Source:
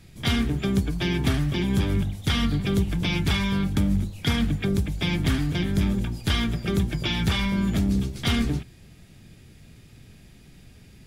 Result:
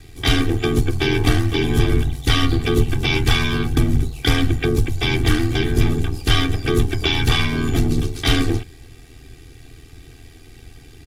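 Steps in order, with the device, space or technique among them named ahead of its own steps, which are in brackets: ring-modulated robot voice (ring modulator 41 Hz; comb 2.6 ms, depth 96%); gain +7.5 dB

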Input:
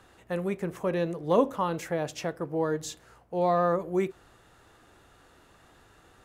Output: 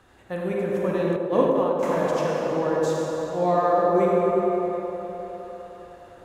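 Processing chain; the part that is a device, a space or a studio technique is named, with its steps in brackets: swimming-pool hall (reverb RT60 4.0 s, pre-delay 36 ms, DRR -3.5 dB; high shelf 4000 Hz -4 dB); 1.16–1.83 gate -20 dBFS, range -10 dB; narrowing echo 0.102 s, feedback 81%, band-pass 530 Hz, level -4 dB

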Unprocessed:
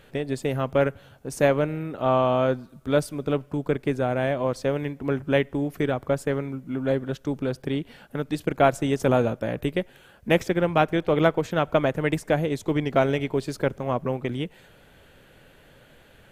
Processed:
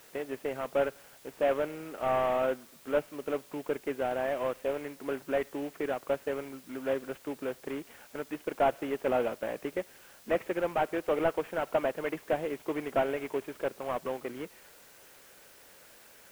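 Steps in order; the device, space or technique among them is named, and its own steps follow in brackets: army field radio (BPF 370–3000 Hz; CVSD 16 kbps; white noise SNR 24 dB); gain -4 dB

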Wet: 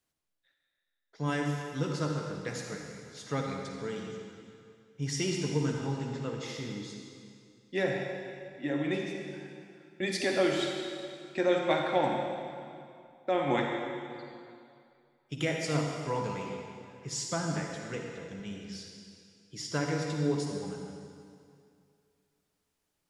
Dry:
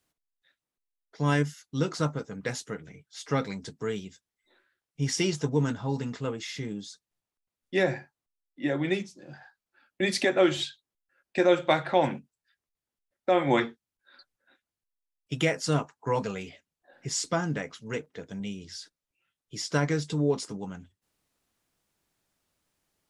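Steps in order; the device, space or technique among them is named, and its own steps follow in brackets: stairwell (reverb RT60 2.4 s, pre-delay 44 ms, DRR 1 dB); gain -6 dB

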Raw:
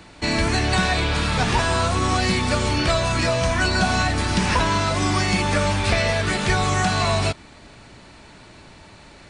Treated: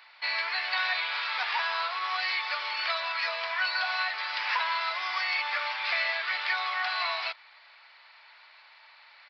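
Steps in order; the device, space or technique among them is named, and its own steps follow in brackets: musical greeting card (downsampling 11025 Hz; HPF 880 Hz 24 dB/oct; bell 2100 Hz +5 dB 0.35 oct); gain -6 dB

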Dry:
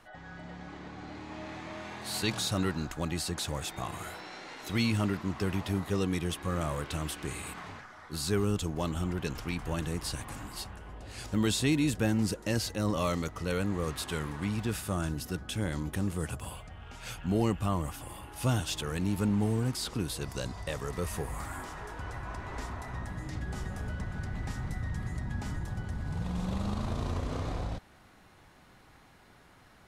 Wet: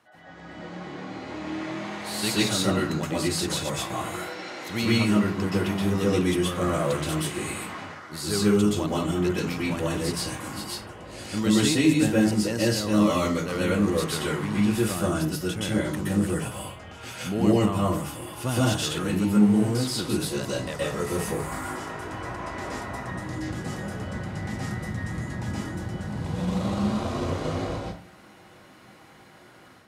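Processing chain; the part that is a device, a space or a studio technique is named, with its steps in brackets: far laptop microphone (reverb RT60 0.35 s, pre-delay 0.116 s, DRR -6 dB; HPF 120 Hz 12 dB/oct; AGC gain up to 6 dB); gain -5 dB

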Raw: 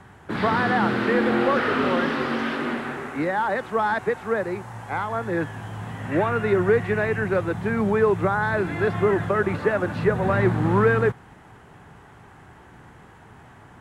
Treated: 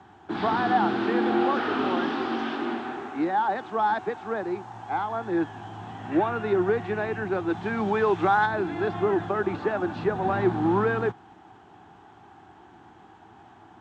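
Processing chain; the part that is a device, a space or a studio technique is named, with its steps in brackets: 7.48–8.45 bell 3300 Hz +4 dB -> +10.5 dB 2.8 oct; car door speaker (speaker cabinet 95–6900 Hz, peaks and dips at 140 Hz -9 dB, 330 Hz +9 dB, 530 Hz -8 dB, 780 Hz +10 dB, 2000 Hz -6 dB, 3400 Hz +4 dB); gain -5 dB

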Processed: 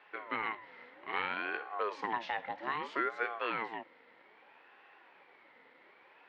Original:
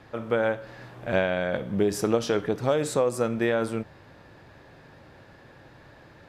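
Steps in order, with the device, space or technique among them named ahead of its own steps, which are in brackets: voice changer toy (ring modulator with a swept carrier 660 Hz, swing 45%, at 0.62 Hz; speaker cabinet 460–3500 Hz, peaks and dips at 650 Hz -8 dB, 1200 Hz -7 dB, 1900 Hz +6 dB); gain -4 dB

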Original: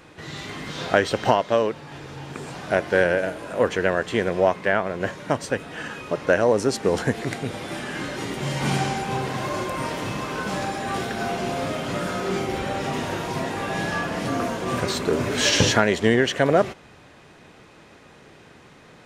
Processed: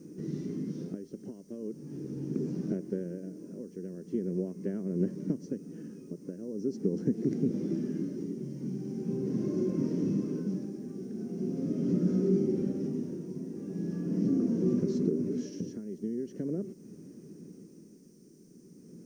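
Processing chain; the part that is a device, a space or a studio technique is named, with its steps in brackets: medium wave at night (BPF 140–4400 Hz; compressor, threshold -27 dBFS, peak gain reduction 14 dB; tremolo 0.41 Hz, depth 71%; whine 9000 Hz -53 dBFS; white noise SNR 20 dB); EQ curve 120 Hz 0 dB, 180 Hz +14 dB, 390 Hz +7 dB, 750 Hz -23 dB, 1900 Hz -22 dB, 3800 Hz -24 dB, 5800 Hz 0 dB, 8400 Hz -17 dB; gain -3 dB

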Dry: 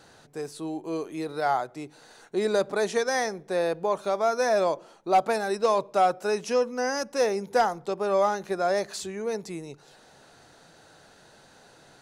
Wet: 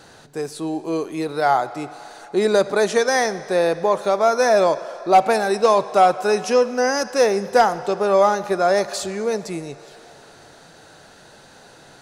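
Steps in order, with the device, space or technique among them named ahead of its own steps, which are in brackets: filtered reverb send (on a send: HPF 540 Hz 12 dB/oct + LPF 8400 Hz + reverb RT60 3.5 s, pre-delay 31 ms, DRR 14 dB); on the sum: gain +7.5 dB

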